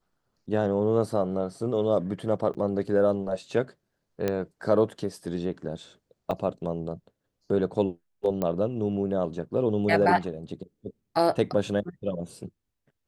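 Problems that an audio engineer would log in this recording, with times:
2.54–2.55 gap 8 ms
4.28 pop -13 dBFS
6.31 gap 3.3 ms
8.42 pop -16 dBFS

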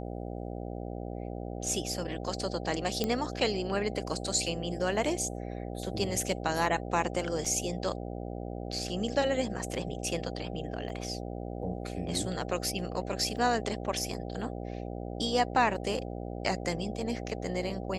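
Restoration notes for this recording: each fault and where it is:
buzz 60 Hz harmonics 13 -38 dBFS
3.04 pop -15 dBFS
7.45 gap 4.2 ms
10.89 gap 3.4 ms
13.37 gap 2.6 ms

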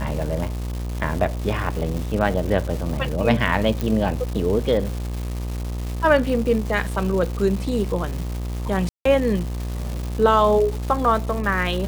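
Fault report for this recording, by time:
buzz 60 Hz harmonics 21 -27 dBFS
crackle 450/s -28 dBFS
3.81 pop
8.89–9.05 gap 0.164 s

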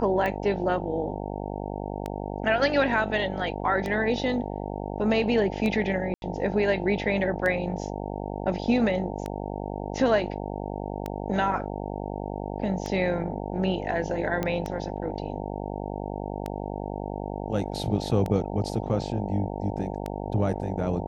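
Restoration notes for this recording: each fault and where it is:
buzz 50 Hz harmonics 18 -33 dBFS
tick 33 1/3 rpm -17 dBFS
6.14–6.22 gap 81 ms
14.43 pop -14 dBFS

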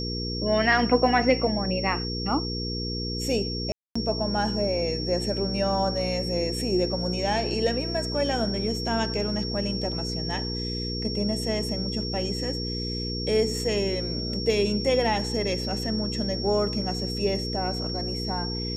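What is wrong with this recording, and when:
hum 60 Hz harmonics 8 -32 dBFS
tone 5500 Hz -32 dBFS
3.72–3.96 gap 0.235 s

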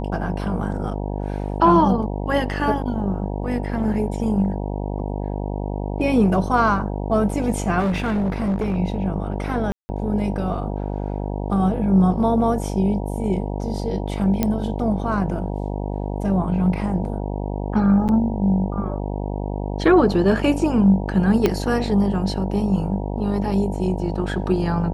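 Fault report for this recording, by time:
buzz 50 Hz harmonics 19 -26 dBFS
7.79–8.76 clipped -18 dBFS
9.72–9.89 gap 0.17 s
14.43 pop -6 dBFS
18.08–18.09 gap 8.5 ms
21.46 pop -5 dBFS

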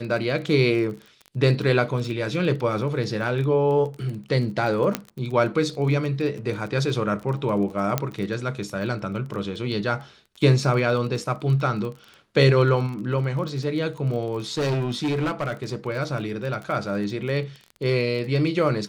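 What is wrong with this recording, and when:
crackle 22/s -31 dBFS
4.95 pop -7 dBFS
7.98 pop -7 dBFS
14.57–15.76 clipped -20.5 dBFS

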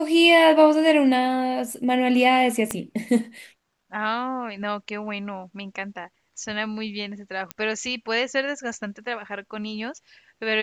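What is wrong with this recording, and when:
2.71 pop -11 dBFS
7.51 pop -12 dBFS

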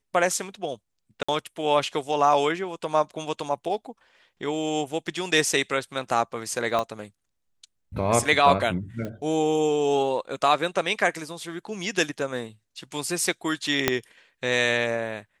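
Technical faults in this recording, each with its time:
1.23–1.28 gap 55 ms
6.79 pop -13 dBFS
9.05 pop -21 dBFS
13.88 pop -3 dBFS

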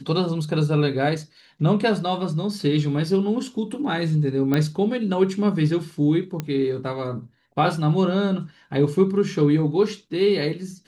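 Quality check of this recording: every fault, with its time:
4.54 pop -10 dBFS
6.4 pop -13 dBFS

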